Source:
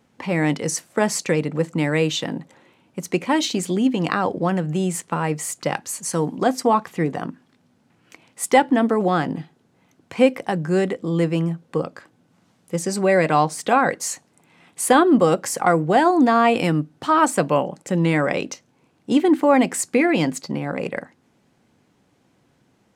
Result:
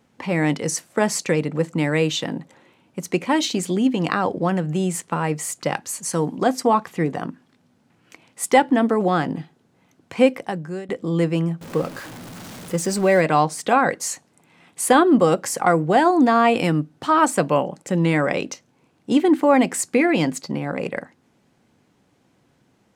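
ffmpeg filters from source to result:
ffmpeg -i in.wav -filter_complex "[0:a]asettb=1/sr,asplit=3[link_01][link_02][link_03];[link_01]atrim=end=11.614[link_04];[link_02]atrim=start=11.61:end=13.21,asetpts=PTS-STARTPTS,afade=type=in:duration=0.004:curve=qsin,afade=type=out:start_time=1.596:duration=0.004:curve=qsin,aeval=exprs='val(0)+0.5*0.0251*sgn(val(0))':channel_layout=same[link_05];[link_03]atrim=start=13.206[link_06];[link_04][link_05]acrossfade=duration=0.004:curve1=hsin:curve2=qsin[link_07];[link_07][link_06]acrossfade=duration=0.004:curve1=qsin:curve2=hsin,asplit=2[link_08][link_09];[link_08]atrim=end=10.89,asetpts=PTS-STARTPTS,afade=type=out:start_time=10.28:duration=0.61:silence=0.1[link_10];[link_09]atrim=start=10.89,asetpts=PTS-STARTPTS,afade=type=in:duration=0.004:curve=hsin:silence=0.1[link_11];[link_10][link_11]concat=n=2:v=0:a=1" out.wav

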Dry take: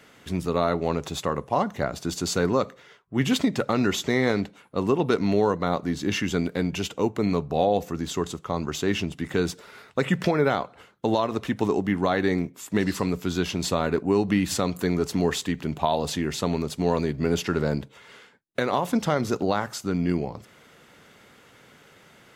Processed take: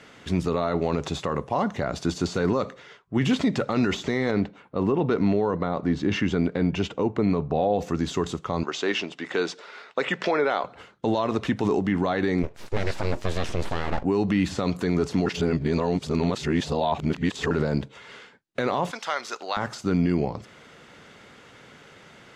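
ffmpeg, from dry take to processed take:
ffmpeg -i in.wav -filter_complex "[0:a]asettb=1/sr,asplit=3[link_01][link_02][link_03];[link_01]atrim=end=4.314[link_04];[link_02]atrim=start=4.31:end=7.79,asetpts=PTS-STARTPTS,afade=type=in:duration=0.004:curve=qsin,afade=type=out:start_time=3.476:duration=0.004:curve=qsin,lowpass=frequency=1900:poles=1[link_05];[link_03]atrim=start=7.786[link_06];[link_04][link_05]acrossfade=duration=0.004:curve1=hsin:curve2=qsin[link_07];[link_07][link_06]acrossfade=duration=0.004:curve1=qsin:curve2=hsin,asettb=1/sr,asplit=3[link_08][link_09][link_10];[link_08]atrim=end=8.634[link_11];[link_09]atrim=start=8.63:end=10.64,asetpts=PTS-STARTPTS,afade=type=in:duration=0.004:curve=qsin,afade=type=out:start_time=2.006:duration=0.004:curve=qsin,highpass=420,lowpass=6200[link_12];[link_10]atrim=start=10.636[link_13];[link_11][link_12]acrossfade=duration=0.004:curve1=hsin:curve2=qsin[link_14];[link_14][link_13]acrossfade=duration=0.004:curve1=qsin:curve2=hsin,asplit=3[link_15][link_16][link_17];[link_15]afade=type=out:start_time=12.42:duration=0.02[link_18];[link_16]aeval=exprs='abs(val(0))':channel_layout=same,afade=type=in:start_time=12.42:duration=0.02,afade=type=out:start_time=14.03:duration=0.02[link_19];[link_17]afade=type=in:start_time=14.03:duration=0.02[link_20];[link_18][link_19][link_20]amix=inputs=3:normalize=0,asettb=1/sr,asplit=3[link_21][link_22][link_23];[link_21]atrim=end=18.914[link_24];[link_22]atrim=start=18.91:end=19.57,asetpts=PTS-STARTPTS,afade=type=in:duration=0.004:curve=qsin,afade=type=out:start_time=0.656:duration=0.004:curve=qsin,highpass=1100[link_25];[link_23]atrim=start=19.566[link_26];[link_24][link_25]acrossfade=duration=0.004:curve1=hsin:curve2=qsin[link_27];[link_27][link_26]acrossfade=duration=0.004:curve1=qsin:curve2=hsin,asplit=3[link_28][link_29][link_30];[link_28]atrim=end=15.262[link_31];[link_29]atrim=start=15.258:end=17.512,asetpts=PTS-STARTPTS,areverse[link_32];[link_30]atrim=start=17.508[link_33];[link_31][link_32]acrossfade=duration=0.004:curve1=hsin:curve2=hsin[link_34];[link_34][link_33]acrossfade=duration=0.004:curve1=hsin:curve2=hsin,deesser=0.8,lowpass=7000,alimiter=limit=-17.5dB:level=0:latency=1:release=29,volume=4dB" out.wav

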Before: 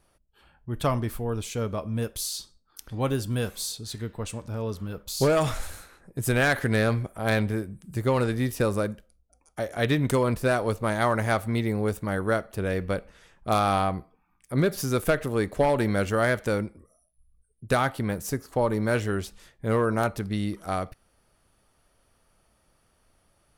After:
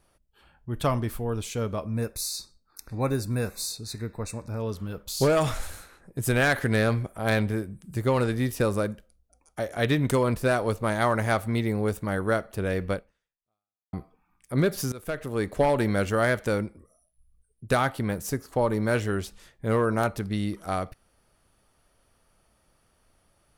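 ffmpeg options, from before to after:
ffmpeg -i in.wav -filter_complex "[0:a]asettb=1/sr,asplit=3[link_01][link_02][link_03];[link_01]atrim=end=1.854[link_04];[link_02]atrim=start=1.85:end=4.6,asetpts=PTS-STARTPTS,afade=type=in:duration=0.004:curve=qsin,afade=type=out:start_time=2.746:duration=0.004:curve=qsin,asuperstop=centerf=3100:order=12:qfactor=3.2[link_05];[link_03]atrim=start=4.596[link_06];[link_04][link_05]acrossfade=duration=0.004:curve1=hsin:curve2=qsin[link_07];[link_07][link_06]acrossfade=duration=0.004:curve1=qsin:curve2=hsin,asplit=3[link_08][link_09][link_10];[link_08]atrim=end=13.93,asetpts=PTS-STARTPTS,afade=type=out:start_time=12.93:duration=1:curve=exp[link_11];[link_09]atrim=start=13.93:end=14.92,asetpts=PTS-STARTPTS,afade=type=in:duration=0.004:curve=hsin,afade=type=out:start_time=0.986:duration=0.004:curve=hsin:silence=0.1[link_12];[link_10]atrim=start=14.92,asetpts=PTS-STARTPTS,afade=type=in:duration=0.62:silence=0.1[link_13];[link_11][link_12][link_13]concat=n=3:v=0:a=1" out.wav

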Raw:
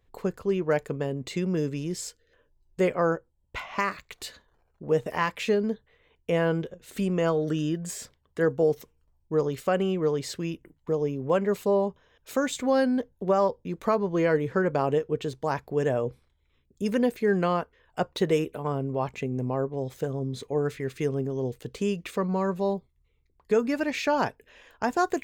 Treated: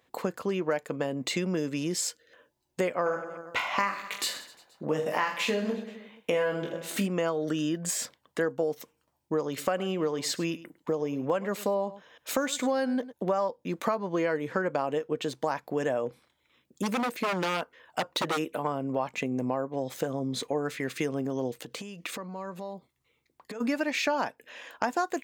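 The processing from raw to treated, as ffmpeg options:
ffmpeg -i in.wav -filter_complex "[0:a]asplit=3[link_01][link_02][link_03];[link_01]afade=type=out:start_time=3.05:duration=0.02[link_04];[link_02]aecho=1:1:20|46|79.8|123.7|180.9|255.1|351.7|477.2:0.631|0.398|0.251|0.158|0.1|0.0631|0.0398|0.0251,afade=type=in:start_time=3.05:duration=0.02,afade=type=out:start_time=7.06:duration=0.02[link_05];[link_03]afade=type=in:start_time=7.06:duration=0.02[link_06];[link_04][link_05][link_06]amix=inputs=3:normalize=0,asettb=1/sr,asplit=3[link_07][link_08][link_09];[link_07]atrim=end=9.474[link_10];[link_08]atrim=start=9.47:end=13.13,asetpts=PTS-STARTPTS,afade=type=in:duration=0.004:curve=qsin,afade=type=out:start_time=3.656:duration=0.004:curve=qsin,aecho=1:1:104:0.106,atrim=end_sample=161406[link_11];[link_09]atrim=start=13.126[link_12];[link_10][link_11]acrossfade=duration=0.004:curve1=hsin:curve2=qsin[link_13];[link_13][link_12]acrossfade=duration=0.004:curve1=qsin:curve2=hsin,asplit=3[link_14][link_15][link_16];[link_14]afade=type=out:start_time=16.06:duration=0.02[link_17];[link_15]aeval=exprs='0.075*(abs(mod(val(0)/0.075+3,4)-2)-1)':channel_layout=same,afade=type=in:start_time=16.06:duration=0.02,afade=type=out:start_time=18.37:duration=0.02[link_18];[link_16]afade=type=in:start_time=18.37:duration=0.02[link_19];[link_17][link_18][link_19]amix=inputs=3:normalize=0,asplit=3[link_20][link_21][link_22];[link_20]afade=type=out:start_time=21.58:duration=0.02[link_23];[link_21]acompressor=threshold=-39dB:ratio=16:attack=3.2:release=140:knee=1:detection=peak,afade=type=in:start_time=21.58:duration=0.02,afade=type=out:start_time=23.6:duration=0.02[link_24];[link_22]afade=type=in:start_time=23.6:duration=0.02[link_25];[link_23][link_24][link_25]amix=inputs=3:normalize=0,highpass=260,equalizer=frequency=410:width_type=o:width=0.28:gain=-9.5,acompressor=threshold=-35dB:ratio=4,volume=8.5dB" out.wav

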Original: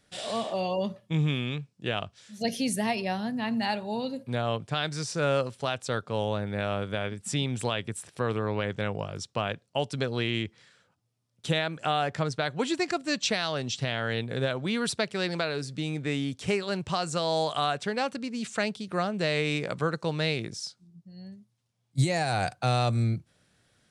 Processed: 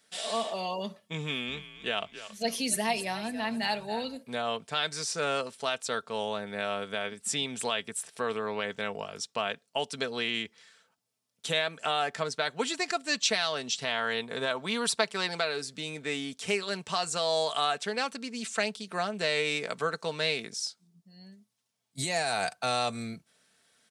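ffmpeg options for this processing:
ffmpeg -i in.wav -filter_complex "[0:a]asettb=1/sr,asplit=3[link_01][link_02][link_03];[link_01]atrim=end=1.204[link_04];[link_02]atrim=start=1.2:end=4.17,asetpts=PTS-STARTPTS,afade=type=in:duration=0.004:curve=qsin,afade=type=out:start_time=2.966:duration=0.004:curve=qsin,asplit=5[link_05][link_06][link_07][link_08][link_09];[link_06]adelay=278,afreqshift=-84,volume=-13dB[link_10];[link_07]adelay=556,afreqshift=-168,volume=-21.2dB[link_11];[link_08]adelay=834,afreqshift=-252,volume=-29.4dB[link_12];[link_09]adelay=1112,afreqshift=-336,volume=-37.5dB[link_13];[link_05][link_10][link_11][link_12][link_13]amix=inputs=5:normalize=0,atrim=end_sample=130977[link_14];[link_03]atrim=start=4.166[link_15];[link_04][link_14]acrossfade=duration=0.004:curve1=hsin:curve2=qsin[link_16];[link_16][link_15]acrossfade=duration=0.004:curve1=qsin:curve2=hsin,asettb=1/sr,asplit=3[link_17][link_18][link_19];[link_17]atrim=end=13.844[link_20];[link_18]atrim=start=13.84:end=15.35,asetpts=PTS-STARTPTS,afade=type=in:duration=0.004:curve=qsin,afade=type=out:start_time=1.506:duration=0.004:curve=qsin,equalizer=frequency=1000:width=2.4:gain=7[link_21];[link_19]atrim=start=15.346[link_22];[link_20][link_21]acrossfade=duration=0.004:curve1=hsin:curve2=qsin[link_23];[link_23][link_22]acrossfade=duration=0.004:curve1=qsin:curve2=hsin,highpass=frequency=560:poles=1,highshelf=frequency=6800:gain=5.5,aecho=1:1:4.5:0.46" out.wav

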